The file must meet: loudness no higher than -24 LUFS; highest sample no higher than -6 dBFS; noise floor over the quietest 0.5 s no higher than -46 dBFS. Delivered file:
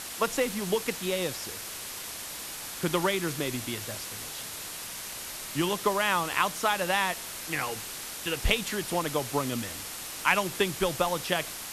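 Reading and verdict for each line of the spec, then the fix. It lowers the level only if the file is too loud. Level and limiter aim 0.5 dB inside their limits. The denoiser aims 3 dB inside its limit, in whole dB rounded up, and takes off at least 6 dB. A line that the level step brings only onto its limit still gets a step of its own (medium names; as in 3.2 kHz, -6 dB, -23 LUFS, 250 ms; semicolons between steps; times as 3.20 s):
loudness -29.5 LUFS: pass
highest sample -9.5 dBFS: pass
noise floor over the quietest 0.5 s -39 dBFS: fail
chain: noise reduction 10 dB, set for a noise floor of -39 dBFS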